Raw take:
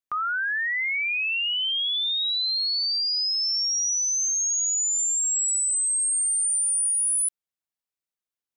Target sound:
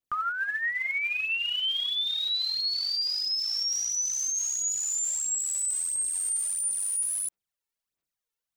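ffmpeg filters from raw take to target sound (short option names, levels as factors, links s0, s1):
-af "adynamicequalizer=threshold=0.00708:dfrequency=1400:dqfactor=1.2:tfrequency=1400:tqfactor=1.2:attack=5:release=100:ratio=0.375:range=4:mode=cutabove:tftype=bell,aphaser=in_gain=1:out_gain=1:delay=2.3:decay=0.65:speed=1.5:type=sinusoidal,alimiter=limit=0.0668:level=0:latency=1:release=17"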